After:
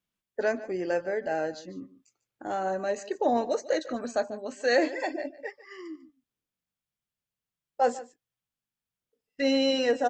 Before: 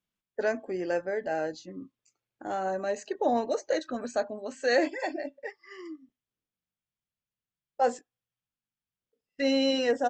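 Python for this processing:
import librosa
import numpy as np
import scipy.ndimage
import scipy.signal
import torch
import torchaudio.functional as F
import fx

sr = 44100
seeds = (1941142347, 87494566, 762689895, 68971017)

y = x + 10.0 ** (-17.0 / 20.0) * np.pad(x, (int(147 * sr / 1000.0), 0))[:len(x)]
y = F.gain(torch.from_numpy(y), 1.0).numpy()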